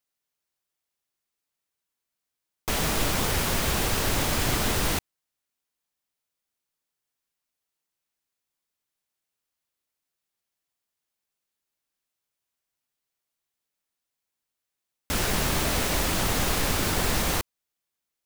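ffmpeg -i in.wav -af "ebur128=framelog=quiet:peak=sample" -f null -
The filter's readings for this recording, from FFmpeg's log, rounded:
Integrated loudness:
  I:         -25.3 LUFS
  Threshold: -35.4 LUFS
Loudness range:
  LRA:         7.8 LU
  Threshold: -48.0 LUFS
  LRA low:   -33.6 LUFS
  LRA high:  -25.8 LUFS
Sample peak:
  Peak:      -11.4 dBFS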